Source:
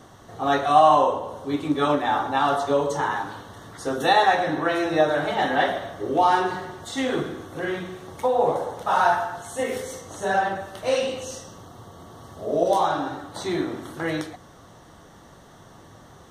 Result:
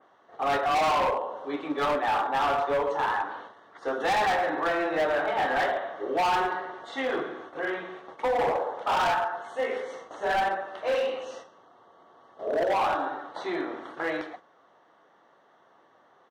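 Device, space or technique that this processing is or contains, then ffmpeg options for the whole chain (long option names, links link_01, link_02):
walkie-talkie: -af "highpass=470,lowpass=2400,aecho=1:1:104:0.0794,asoftclip=type=hard:threshold=-23dB,agate=range=-9dB:threshold=-44dB:ratio=16:detection=peak,adynamicequalizer=threshold=0.00708:dfrequency=3400:dqfactor=0.7:tfrequency=3400:tqfactor=0.7:attack=5:release=100:ratio=0.375:range=2.5:mode=cutabove:tftype=highshelf,volume=1dB"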